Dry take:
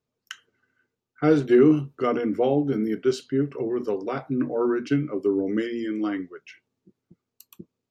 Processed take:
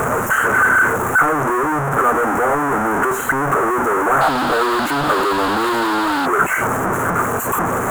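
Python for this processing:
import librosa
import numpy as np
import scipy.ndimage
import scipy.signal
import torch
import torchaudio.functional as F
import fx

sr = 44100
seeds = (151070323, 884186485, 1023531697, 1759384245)

y = np.sign(x) * np.sqrt(np.mean(np.square(x)))
y = fx.curve_eq(y, sr, hz=(270.0, 1400.0, 4800.0, 6900.0), db=(0, 15, -29, 1))
y = fx.dmg_noise_band(y, sr, seeds[0], low_hz=2400.0, high_hz=4600.0, level_db=-35.0, at=(4.2, 6.25), fade=0.02)
y = fx.doppler_dist(y, sr, depth_ms=0.12)
y = y * librosa.db_to_amplitude(2.5)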